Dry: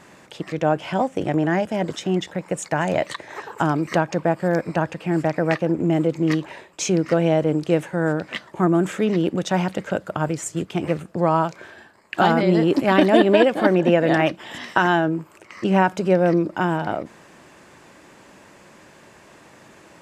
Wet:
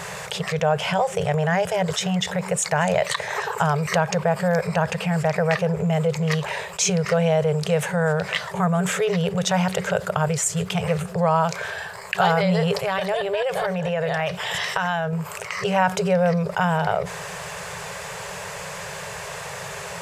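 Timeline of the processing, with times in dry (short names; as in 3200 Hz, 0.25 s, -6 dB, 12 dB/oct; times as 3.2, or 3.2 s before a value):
12.77–15.13 compressor, threshold -23 dBFS
whole clip: FFT band-reject 190–390 Hz; high shelf 5100 Hz +5.5 dB; fast leveller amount 50%; gain -2 dB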